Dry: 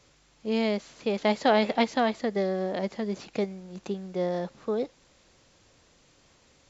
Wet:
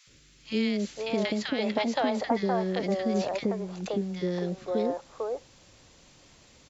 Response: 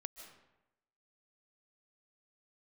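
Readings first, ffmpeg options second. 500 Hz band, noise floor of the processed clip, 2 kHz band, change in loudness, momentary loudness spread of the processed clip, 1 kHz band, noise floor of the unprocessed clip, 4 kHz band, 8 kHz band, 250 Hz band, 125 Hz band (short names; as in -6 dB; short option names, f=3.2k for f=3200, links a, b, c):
-1.5 dB, -58 dBFS, -2.0 dB, -1.0 dB, 7 LU, -2.5 dB, -62 dBFS, 0.0 dB, n/a, +1.0 dB, +2.5 dB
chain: -filter_complex "[0:a]acompressor=threshold=-26dB:ratio=6,acrossover=split=460|1400[a][b][c];[a]adelay=70[d];[b]adelay=520[e];[d][e][c]amix=inputs=3:normalize=0,volume=5.5dB"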